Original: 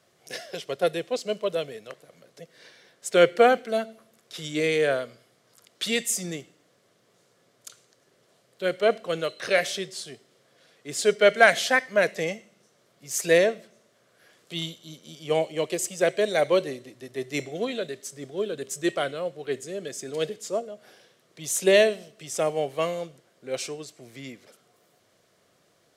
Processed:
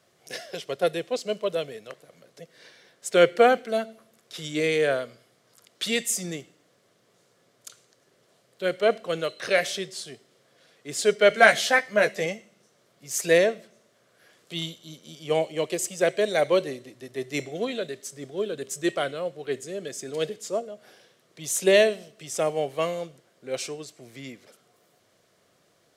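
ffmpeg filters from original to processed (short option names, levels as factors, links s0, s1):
-filter_complex "[0:a]asettb=1/sr,asplit=3[s0][s1][s2];[s0]atrim=end=11.294[s3];[s1]atrim=start=11.29:end=12.26,asetpts=PTS-STARTPTS,afade=t=in:d=0.004:c=qsin,afade=t=out:st=0.966:d=0.004:c=qsin,asplit=2[s4][s5];[s5]adelay=14,volume=0.562[s6];[s4][s6]amix=inputs=2:normalize=0,atrim=end_sample=42777[s7];[s2]atrim=start=12.256[s8];[s3][s7]acrossfade=d=0.004:c1=hsin:c2=qsin[s9];[s9][s8]acrossfade=d=0.004:c1=qsin:c2=hsin"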